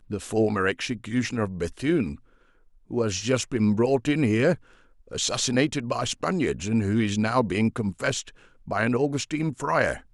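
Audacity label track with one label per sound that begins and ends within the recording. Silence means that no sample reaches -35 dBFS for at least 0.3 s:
2.910000	4.550000	sound
5.110000	8.290000	sound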